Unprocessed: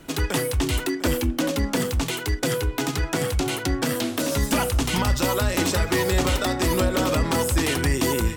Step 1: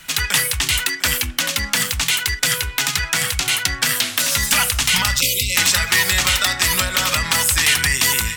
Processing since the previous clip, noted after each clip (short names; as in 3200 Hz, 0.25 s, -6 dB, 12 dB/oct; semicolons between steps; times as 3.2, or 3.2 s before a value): spectral delete 5.21–5.55, 570–2000 Hz; EQ curve 200 Hz 0 dB, 310 Hz -13 dB, 1900 Hz +15 dB; gain -3 dB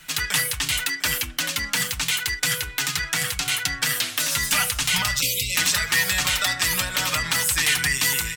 comb 6.6 ms, depth 54%; gain -6 dB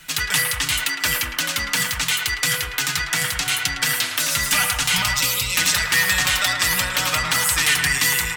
narrowing echo 0.109 s, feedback 71%, band-pass 1100 Hz, level -4 dB; gain +2 dB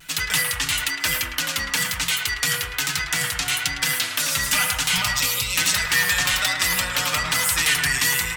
de-hum 63.01 Hz, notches 35; vibrato 1.1 Hz 42 cents; gain -1.5 dB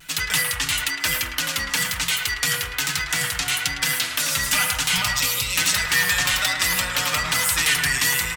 echo 1.094 s -18 dB